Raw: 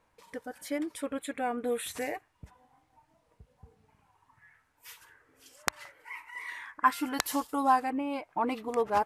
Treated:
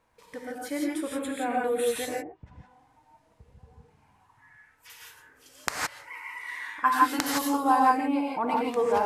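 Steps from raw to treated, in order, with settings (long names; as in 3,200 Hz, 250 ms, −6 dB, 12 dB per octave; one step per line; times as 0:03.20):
0:02.04–0:04.90: treble cut that deepens with the level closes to 410 Hz, closed at −35.5 dBFS
reverb whose tail is shaped and stops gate 190 ms rising, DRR −2.5 dB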